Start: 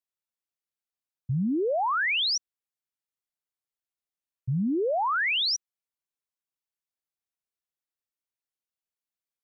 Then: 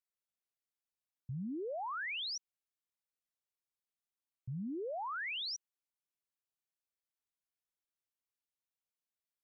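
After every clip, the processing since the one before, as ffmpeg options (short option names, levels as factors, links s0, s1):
-af "alimiter=level_in=2.24:limit=0.0631:level=0:latency=1,volume=0.447,volume=0.531"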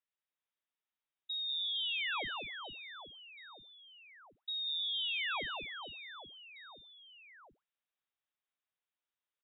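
-filter_complex "[0:a]asplit=2[s0][s1];[s1]aecho=0:1:190|456|828.4|1350|2080:0.631|0.398|0.251|0.158|0.1[s2];[s0][s2]amix=inputs=2:normalize=0,lowpass=f=3300:t=q:w=0.5098,lowpass=f=3300:t=q:w=0.6013,lowpass=f=3300:t=q:w=0.9,lowpass=f=3300:t=q:w=2.563,afreqshift=-3900,volume=1.19"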